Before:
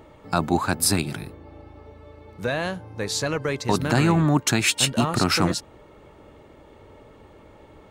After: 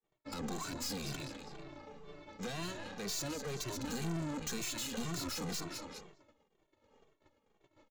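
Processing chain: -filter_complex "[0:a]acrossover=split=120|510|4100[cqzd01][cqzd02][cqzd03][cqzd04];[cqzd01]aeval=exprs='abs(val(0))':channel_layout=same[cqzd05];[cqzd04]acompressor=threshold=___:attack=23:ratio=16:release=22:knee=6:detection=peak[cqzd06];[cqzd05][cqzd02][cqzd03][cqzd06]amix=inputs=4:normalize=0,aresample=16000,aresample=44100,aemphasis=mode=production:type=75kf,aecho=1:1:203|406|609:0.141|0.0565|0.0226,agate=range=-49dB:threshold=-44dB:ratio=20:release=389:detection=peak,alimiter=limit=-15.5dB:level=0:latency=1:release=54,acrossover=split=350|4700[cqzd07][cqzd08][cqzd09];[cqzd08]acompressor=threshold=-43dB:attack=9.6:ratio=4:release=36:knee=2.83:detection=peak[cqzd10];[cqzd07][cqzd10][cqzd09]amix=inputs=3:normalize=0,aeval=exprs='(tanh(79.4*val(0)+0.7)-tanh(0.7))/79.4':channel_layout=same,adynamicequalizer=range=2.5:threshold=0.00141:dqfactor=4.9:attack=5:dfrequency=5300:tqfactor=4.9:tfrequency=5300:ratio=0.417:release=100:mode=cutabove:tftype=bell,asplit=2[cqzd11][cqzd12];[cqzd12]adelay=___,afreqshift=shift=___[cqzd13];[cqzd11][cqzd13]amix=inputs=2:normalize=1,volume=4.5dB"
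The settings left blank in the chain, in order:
-35dB, 2.1, -2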